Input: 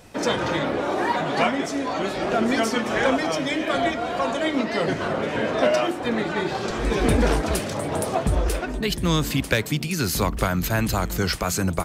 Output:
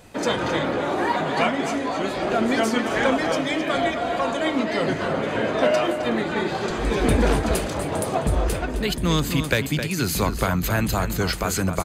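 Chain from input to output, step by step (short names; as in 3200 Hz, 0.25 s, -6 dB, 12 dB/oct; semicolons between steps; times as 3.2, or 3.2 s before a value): notch 5500 Hz, Q 9.5; outdoor echo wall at 45 m, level -8 dB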